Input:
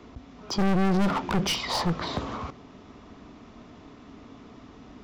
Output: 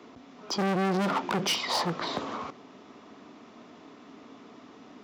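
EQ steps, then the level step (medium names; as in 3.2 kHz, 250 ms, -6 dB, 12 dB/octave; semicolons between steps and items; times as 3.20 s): high-pass 240 Hz 12 dB/octave; 0.0 dB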